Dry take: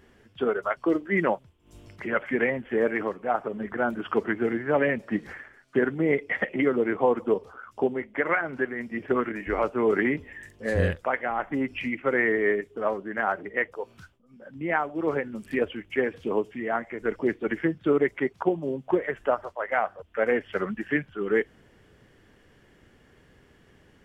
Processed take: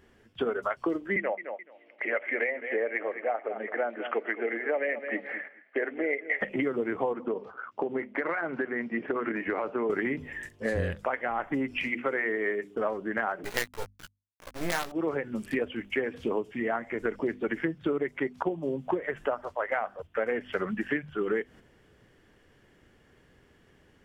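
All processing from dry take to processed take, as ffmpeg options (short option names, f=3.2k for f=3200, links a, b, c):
-filter_complex "[0:a]asettb=1/sr,asplit=3[a][b][c];[a]atrim=end=1.164[d];[b]atrim=start=1.16:end=6.41,asetpts=PTS-STARTPTS,afade=t=in:d=0.004:c=qsin,afade=t=out:st=5.246:d=0.004:c=qsin,highpass=f=350:w=0.5412,highpass=f=350:w=1.3066,equalizer=f=370:t=q:w=4:g=-7,equalizer=f=610:t=q:w=4:g=3,equalizer=f=1k:t=q:w=4:g=-9,equalizer=f=1.4k:t=q:w=4:g=-7,equalizer=f=2.1k:t=q:w=4:g=7,lowpass=f=2.6k:w=0.5412,lowpass=f=2.6k:w=1.3066,aecho=1:1:214|428|642:0.178|0.0516|0.015,atrim=end_sample=231525[e];[c]atrim=start=6.406[f];[d][e]acrossfade=d=0.004:c1=hsin:c2=qsin[g];[g][f]acrossfade=d=0.004:c1=qsin:c2=hsin,asettb=1/sr,asplit=3[h][i][j];[h]atrim=end=7.134[k];[i]atrim=start=7.13:end=9.9,asetpts=PTS-STARTPTS,afade=t=in:d=0.004:c=qsin,afade=t=out:st=2.766:d=0.004:c=qsin,highpass=180,lowpass=2.7k,acompressor=threshold=-25dB:ratio=6:attack=3.2:release=140:knee=1:detection=peak[l];[j]atrim=start=9.896[m];[k][l]acrossfade=d=0.004:c1=hsin:c2=qsin[n];[n][m]acrossfade=d=0.004:c1=qsin:c2=hsin,asettb=1/sr,asplit=3[o][p][q];[o]atrim=end=11.824[r];[p]atrim=start=11.82:end=12.76,asetpts=PTS-STARTPTS,afade=t=in:d=0.004:c=qsin,afade=t=out:st=0.936:d=0.004:c=qsin,highpass=f=240:p=1,bandreject=f=60:t=h:w=6,bandreject=f=120:t=h:w=6,bandreject=f=180:t=h:w=6,bandreject=f=240:t=h:w=6,bandreject=f=300:t=h:w=6,bandreject=f=360:t=h:w=6,bandreject=f=420:t=h:w=6,bandreject=f=480:t=h:w=6[s];[q]atrim=start=12.756[t];[r][s]acrossfade=d=0.004:c1=hsin:c2=qsin[u];[u][t]acrossfade=d=0.004:c1=qsin:c2=hsin,asettb=1/sr,asplit=3[v][w][x];[v]atrim=end=13.444[y];[w]atrim=start=13.44:end=14.92,asetpts=PTS-STARTPTS,afade=t=in:d=0.004:c=qsin,afade=t=out:st=1.476:d=0.004:c=qsin,acrusher=bits=4:dc=4:mix=0:aa=0.000001,asplit=2[z][aa];[aa]adelay=17,volume=-5.5dB[ab];[z][ab]amix=inputs=2:normalize=0,atrim=end_sample=65268[ac];[x]atrim=start=14.916[ad];[y][ac]acrossfade=d=0.004:c1=hsin:c2=qsin[ae];[ae][ad]acrossfade=d=0.004:c1=qsin:c2=hsin,agate=range=-7dB:threshold=-45dB:ratio=16:detection=peak,bandreject=f=50:t=h:w=6,bandreject=f=100:t=h:w=6,bandreject=f=150:t=h:w=6,bandreject=f=200:t=h:w=6,bandreject=f=250:t=h:w=6,acompressor=threshold=-30dB:ratio=6,volume=4dB"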